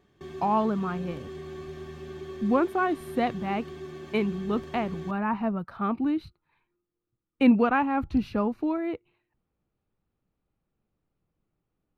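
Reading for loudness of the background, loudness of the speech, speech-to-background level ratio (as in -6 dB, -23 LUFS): -40.5 LUFS, -27.5 LUFS, 13.0 dB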